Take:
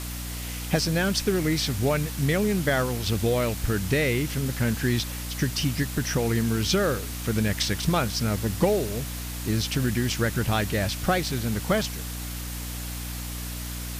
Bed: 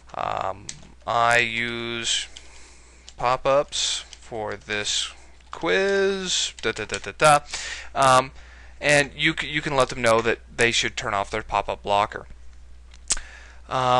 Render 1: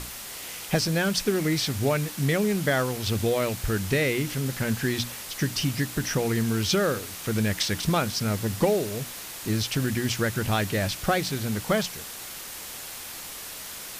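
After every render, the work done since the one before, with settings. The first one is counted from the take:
mains-hum notches 60/120/180/240/300 Hz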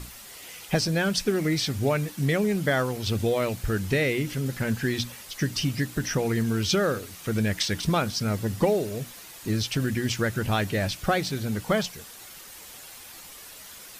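broadband denoise 8 dB, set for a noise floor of −39 dBFS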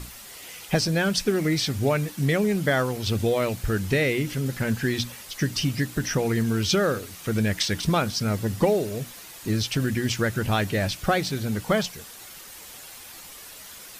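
level +1.5 dB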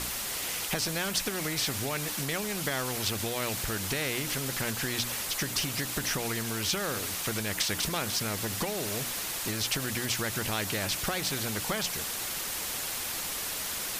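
downward compressor, threshold −24 dBFS, peak gain reduction 8.5 dB
every bin compressed towards the loudest bin 2 to 1

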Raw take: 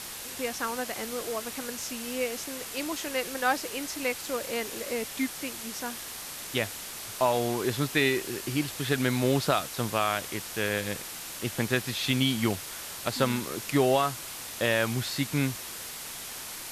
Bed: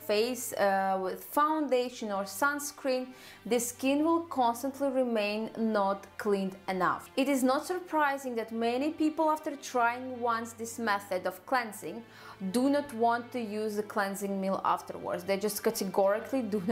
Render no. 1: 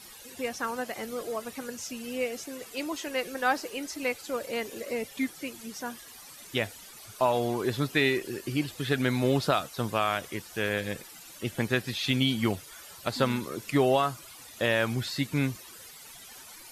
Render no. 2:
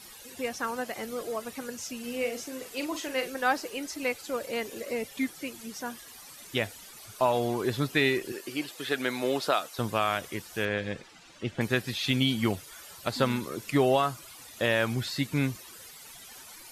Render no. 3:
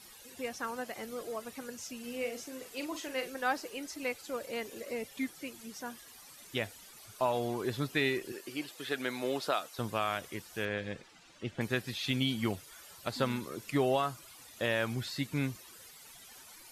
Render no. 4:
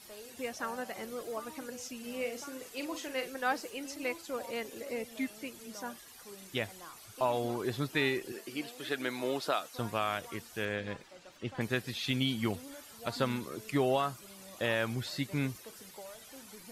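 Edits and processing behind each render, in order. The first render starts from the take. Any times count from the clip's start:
broadband denoise 14 dB, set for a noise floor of −40 dBFS
0:01.99–0:03.30: double-tracking delay 42 ms −8 dB; 0:08.32–0:09.79: high-pass filter 340 Hz; 0:10.65–0:11.61: high-frequency loss of the air 110 metres
level −5.5 dB
mix in bed −22.5 dB

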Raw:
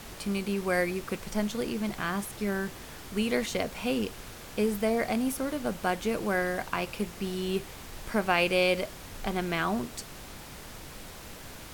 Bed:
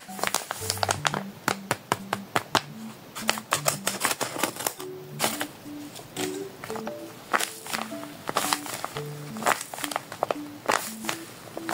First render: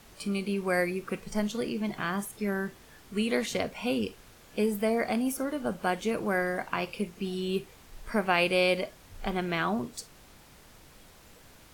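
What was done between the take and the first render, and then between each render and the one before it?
noise reduction from a noise print 10 dB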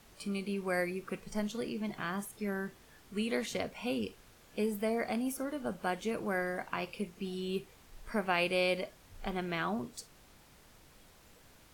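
level −5.5 dB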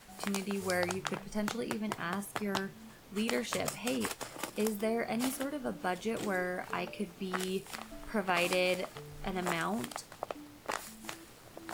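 mix in bed −13 dB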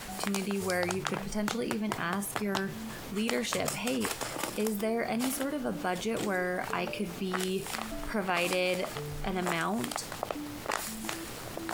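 envelope flattener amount 50%

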